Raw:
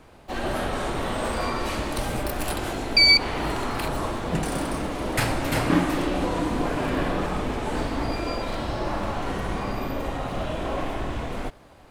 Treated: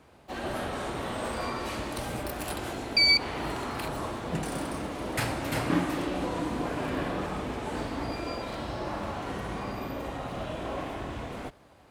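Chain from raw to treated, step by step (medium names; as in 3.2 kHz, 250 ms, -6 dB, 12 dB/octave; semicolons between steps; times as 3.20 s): high-pass 59 Hz; trim -5.5 dB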